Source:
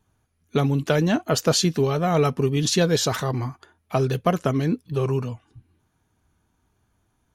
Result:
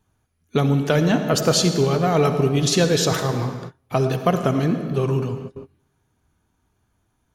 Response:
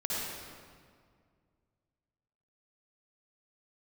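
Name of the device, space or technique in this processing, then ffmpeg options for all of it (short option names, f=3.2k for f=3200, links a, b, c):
keyed gated reverb: -filter_complex "[0:a]asplit=3[a][b][c];[1:a]atrim=start_sample=2205[d];[b][d]afir=irnorm=-1:irlink=0[e];[c]apad=whole_len=323924[f];[e][f]sidechaingate=range=-31dB:threshold=-48dB:ratio=16:detection=peak,volume=-11dB[g];[a][g]amix=inputs=2:normalize=0"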